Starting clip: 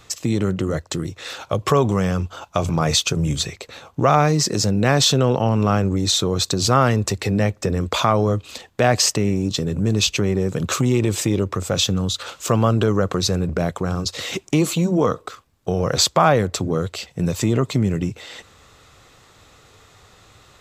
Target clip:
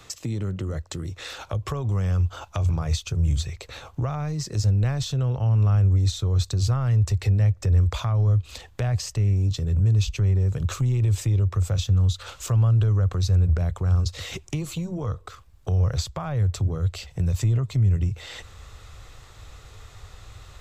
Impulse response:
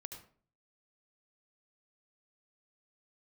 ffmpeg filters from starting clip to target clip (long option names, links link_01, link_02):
-filter_complex "[0:a]asubboost=boost=8:cutoff=75,acrossover=split=120[link_01][link_02];[link_02]acompressor=threshold=-34dB:ratio=4[link_03];[link_01][link_03]amix=inputs=2:normalize=0"